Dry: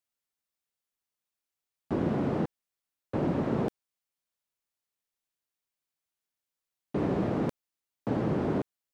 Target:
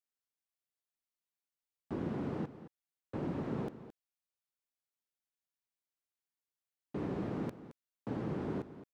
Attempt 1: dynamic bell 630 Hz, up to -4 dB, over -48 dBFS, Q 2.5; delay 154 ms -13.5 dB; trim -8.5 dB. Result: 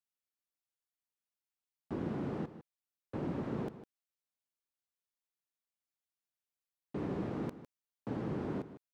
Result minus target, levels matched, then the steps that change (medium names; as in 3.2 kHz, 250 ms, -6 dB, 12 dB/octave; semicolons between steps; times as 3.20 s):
echo 65 ms early
change: delay 219 ms -13.5 dB